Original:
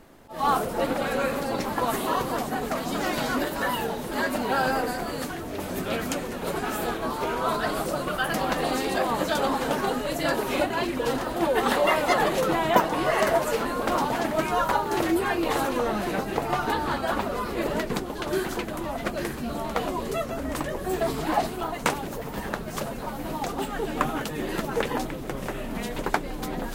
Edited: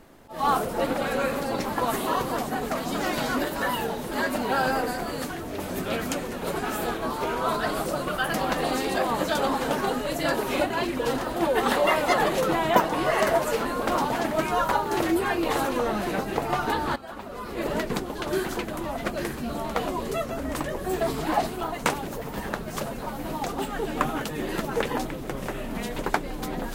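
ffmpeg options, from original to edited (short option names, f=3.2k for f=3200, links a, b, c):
-filter_complex "[0:a]asplit=2[a][b];[a]atrim=end=16.96,asetpts=PTS-STARTPTS,afade=t=out:st=16.956:d=0.004:c=hsin:silence=0.199526[c];[b]atrim=start=16.96,asetpts=PTS-STARTPTS,afade=t=in:d=0.76:c=qua:silence=0.199526[d];[c][d]concat=n=2:v=0:a=1"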